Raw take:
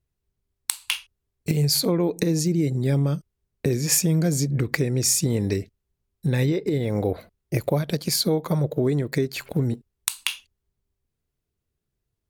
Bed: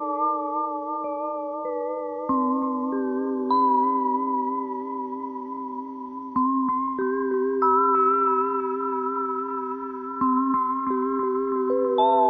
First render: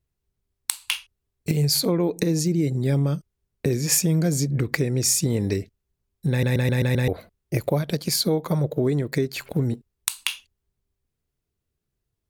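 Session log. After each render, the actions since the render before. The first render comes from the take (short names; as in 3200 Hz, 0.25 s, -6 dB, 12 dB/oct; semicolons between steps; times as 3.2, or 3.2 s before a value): 6.3 stutter in place 0.13 s, 6 plays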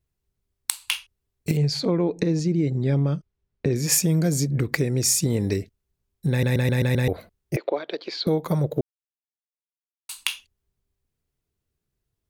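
1.57–3.76 air absorption 130 m; 7.56–8.27 elliptic band-pass 340–3900 Hz, stop band 50 dB; 8.81–10.09 mute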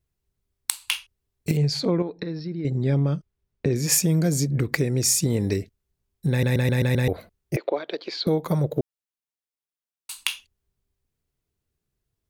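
2.02–2.65 rippled Chebyshev low-pass 5500 Hz, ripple 9 dB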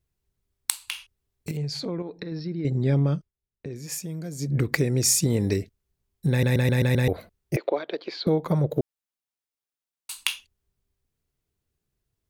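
0.86–2.32 compressor 2:1, threshold -33 dBFS; 3.17–4.53 dip -13 dB, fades 0.15 s; 7.84–8.7 high shelf 5200 Hz -11.5 dB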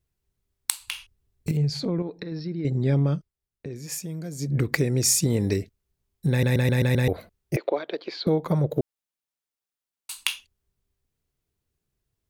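0.8–2.1 low shelf 250 Hz +9 dB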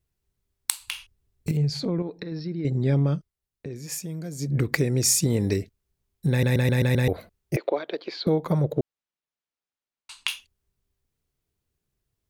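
8.72–10.28 air absorption 100 m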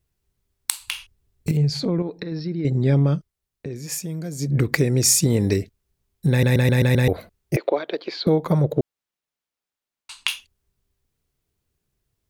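gain +4 dB; limiter -3 dBFS, peak gain reduction 2.5 dB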